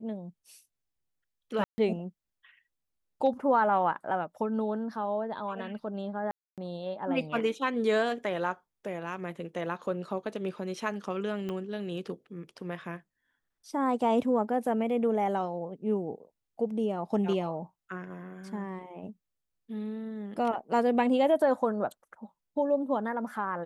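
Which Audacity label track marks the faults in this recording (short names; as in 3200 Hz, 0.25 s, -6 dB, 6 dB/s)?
1.640000	1.780000	gap 0.14 s
6.310000	6.580000	gap 0.267 s
11.490000	11.490000	pop -24 dBFS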